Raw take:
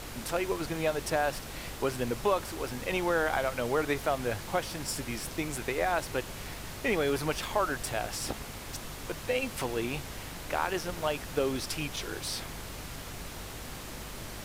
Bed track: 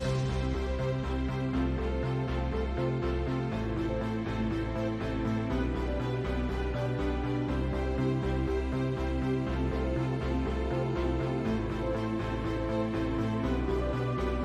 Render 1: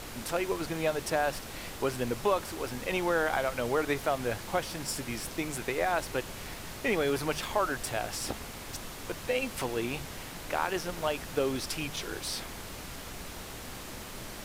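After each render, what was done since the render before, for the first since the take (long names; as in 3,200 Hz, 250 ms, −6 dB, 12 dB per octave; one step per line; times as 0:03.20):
hum removal 50 Hz, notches 3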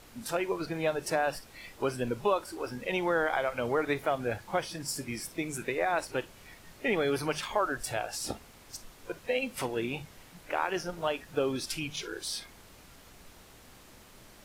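noise reduction from a noise print 12 dB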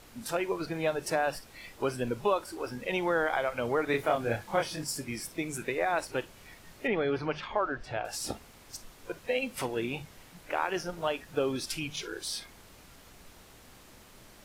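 0:03.91–0:04.84: double-tracking delay 26 ms −2 dB
0:06.87–0:08.05: high-frequency loss of the air 230 metres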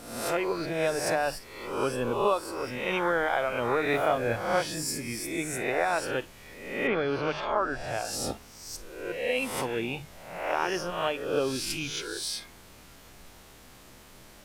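peak hold with a rise ahead of every peak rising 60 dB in 0.82 s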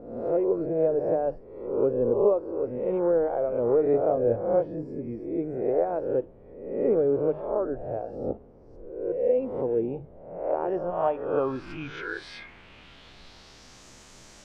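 low-pass filter sweep 490 Hz → 6,700 Hz, 0:10.41–0:13.88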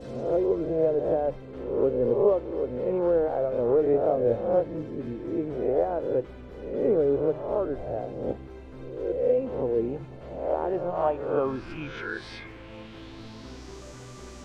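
mix in bed track −13.5 dB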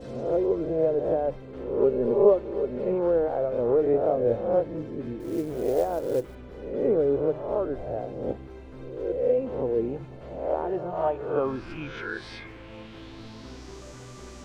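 0:01.80–0:02.94: comb filter 5 ms, depth 56%
0:05.20–0:06.35: log-companded quantiser 6 bits
0:10.62–0:11.36: notch comb filter 270 Hz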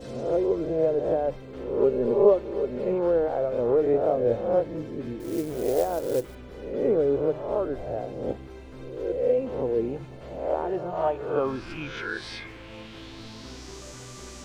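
high-shelf EQ 2,700 Hz +8 dB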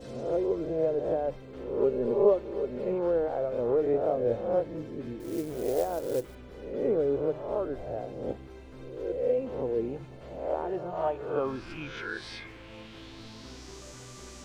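level −4 dB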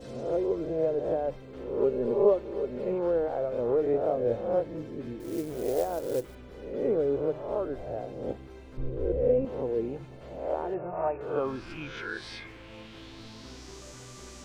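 0:08.77–0:09.45: RIAA equalisation playback
0:10.74–0:11.21: linear-phase brick-wall low-pass 2,800 Hz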